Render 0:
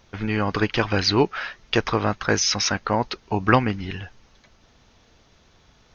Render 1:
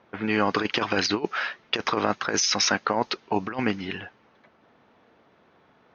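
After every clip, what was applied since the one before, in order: high-pass 220 Hz 12 dB/octave; level-controlled noise filter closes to 1.7 kHz, open at -18.5 dBFS; compressor with a negative ratio -23 dBFS, ratio -0.5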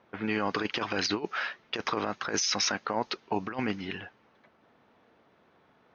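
peak limiter -13 dBFS, peak gain reduction 6.5 dB; trim -4 dB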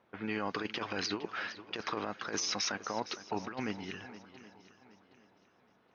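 shuffle delay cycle 769 ms, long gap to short 1.5:1, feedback 30%, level -15 dB; trim -6 dB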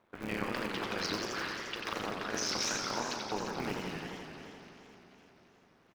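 cycle switcher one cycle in 3, muted; doubling 38 ms -11 dB; modulated delay 87 ms, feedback 80%, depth 200 cents, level -4.5 dB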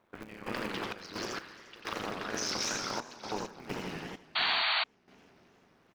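trance gate "x.xx.x..xxxxx." 65 bpm -12 dB; painted sound noise, 4.35–4.84 s, 620–4600 Hz -29 dBFS

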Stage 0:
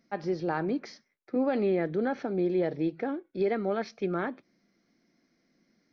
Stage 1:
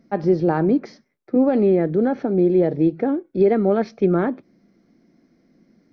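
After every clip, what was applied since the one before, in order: tilt shelf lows +7 dB, about 930 Hz; gain riding 2 s; trim +6 dB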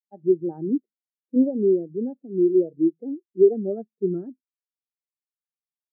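spectral contrast expander 2.5:1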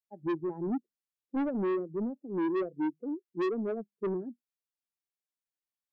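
wow and flutter 120 cents; saturation -24 dBFS, distortion -6 dB; trim -3 dB

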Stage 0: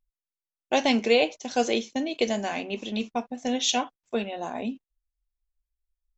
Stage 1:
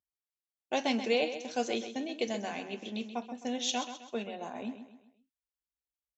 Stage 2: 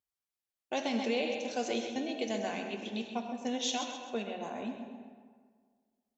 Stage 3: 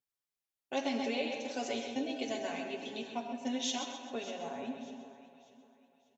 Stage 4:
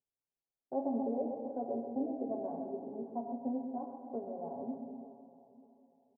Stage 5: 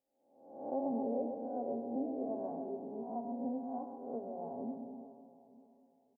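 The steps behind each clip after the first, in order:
high-pass 72 Hz 24 dB/octave; on a send: feedback delay 130 ms, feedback 42%, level -10.5 dB; on the sum: trim -8 dB
peak limiter -23 dBFS, peak gain reduction 7 dB; on a send at -6 dB: reverberation RT60 1.8 s, pre-delay 35 ms
comb 7.3 ms, depth 84%; echo whose repeats swap between lows and highs 297 ms, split 850 Hz, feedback 57%, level -10.5 dB; trim -4 dB
steep low-pass 850 Hz 36 dB/octave; doubling 30 ms -12 dB
reverse spectral sustain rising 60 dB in 0.76 s; trim -3 dB

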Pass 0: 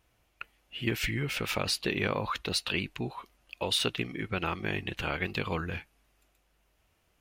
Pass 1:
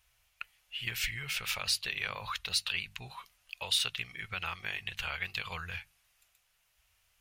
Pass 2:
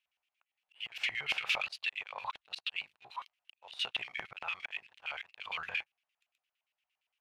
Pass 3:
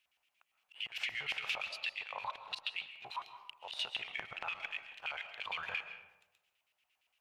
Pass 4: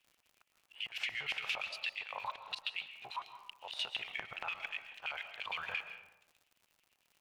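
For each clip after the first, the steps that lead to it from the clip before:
amplifier tone stack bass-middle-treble 10-0-10; hum notches 50/100/150/200 Hz; in parallel at -1.5 dB: compression, threshold -43 dBFS, peak gain reduction 16 dB
slow attack 246 ms; waveshaping leveller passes 3; LFO band-pass square 8.7 Hz 790–2700 Hz; trim -1 dB
compression 2.5:1, threshold -47 dBFS, peak gain reduction 13 dB; algorithmic reverb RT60 1 s, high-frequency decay 0.45×, pre-delay 95 ms, DRR 9 dB; trim +6.5 dB
crackle 89 per s -52 dBFS

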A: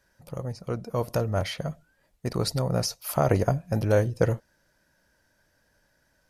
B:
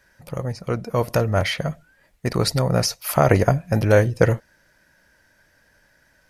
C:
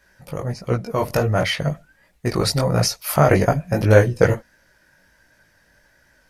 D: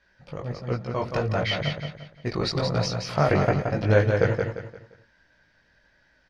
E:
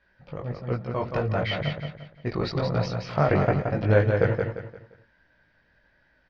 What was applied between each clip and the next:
peaking EQ 2 kHz +6.5 dB 0.99 oct; trim +6 dB
chorus voices 2, 1.4 Hz, delay 19 ms, depth 3 ms; trim +4.5 dB
four-pole ladder low-pass 5.2 kHz, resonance 30%; feedback delay 174 ms, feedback 35%, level -5 dB
distance through air 200 m

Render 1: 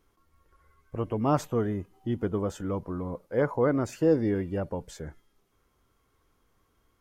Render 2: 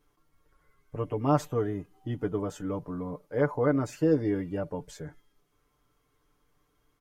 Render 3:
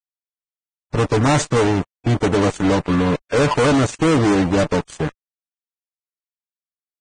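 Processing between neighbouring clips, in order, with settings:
comb 6.8 ms; trim -3 dB
fuzz box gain 37 dB, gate -42 dBFS; Vorbis 16 kbps 22.05 kHz

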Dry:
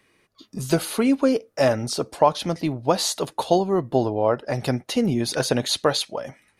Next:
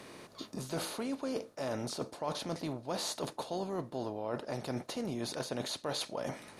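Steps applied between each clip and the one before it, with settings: spectral levelling over time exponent 0.6; reverse; compression 6:1, threshold -25 dBFS, peak gain reduction 15.5 dB; reverse; trim -9 dB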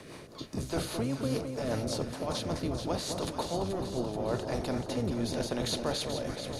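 octave divider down 1 oct, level -2 dB; rotary cabinet horn 5 Hz, later 0.85 Hz, at 2.37 s; on a send: echo whose repeats swap between lows and highs 216 ms, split 1.1 kHz, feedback 81%, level -6 dB; on the sum: trim +5 dB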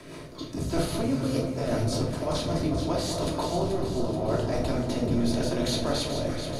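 simulated room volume 700 m³, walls furnished, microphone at 2.9 m

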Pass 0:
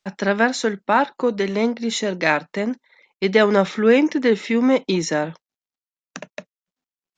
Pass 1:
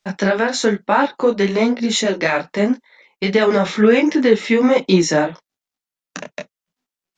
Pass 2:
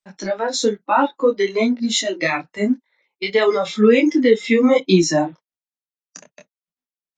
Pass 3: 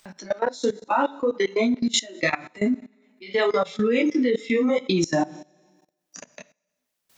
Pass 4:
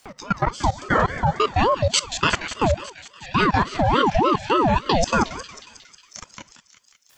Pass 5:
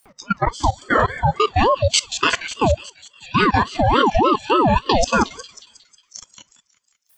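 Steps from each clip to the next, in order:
loudness maximiser +9 dB; detune thickener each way 36 cents
spectral noise reduction 16 dB
upward compressor, threshold -26 dBFS; on a send at -10 dB: reverberation, pre-delay 3 ms; on the sum: level held to a coarse grid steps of 20 dB
thinning echo 181 ms, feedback 73%, high-pass 1.2 kHz, level -9.5 dB; ring modulator with a swept carrier 580 Hz, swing 45%, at 3.5 Hz; trim +5.5 dB
spectral noise reduction 14 dB; trim +3 dB

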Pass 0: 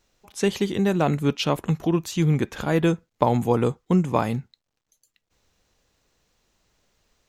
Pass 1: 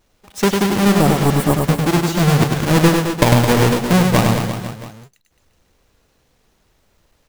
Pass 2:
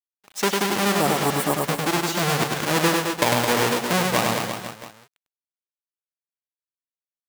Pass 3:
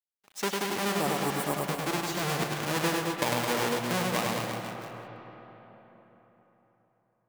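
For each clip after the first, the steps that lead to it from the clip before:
square wave that keeps the level; spectral replace 0.98–1.52 s, 1.3–7.1 kHz; reverse bouncing-ball echo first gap 100 ms, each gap 1.15×, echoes 5; trim +1 dB
high-pass 600 Hz 6 dB/octave; in parallel at -0.5 dB: peak limiter -9.5 dBFS, peak gain reduction 11.5 dB; on the sum: crossover distortion -41.5 dBFS; trim -5.5 dB
reverberation RT60 4.1 s, pre-delay 70 ms, DRR 6.5 dB; trim -8.5 dB

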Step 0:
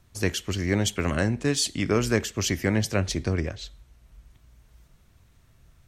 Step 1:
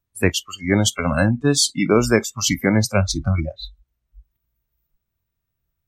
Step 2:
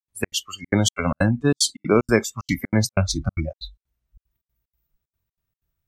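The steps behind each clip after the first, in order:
spectral noise reduction 29 dB; trim +8 dB
trance gate ".xx.xxxx.xx" 187 bpm -60 dB; trim -1.5 dB

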